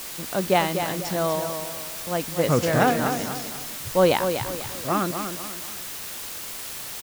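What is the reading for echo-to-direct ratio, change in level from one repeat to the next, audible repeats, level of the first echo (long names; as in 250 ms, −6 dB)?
−7.0 dB, −8.5 dB, 3, −7.5 dB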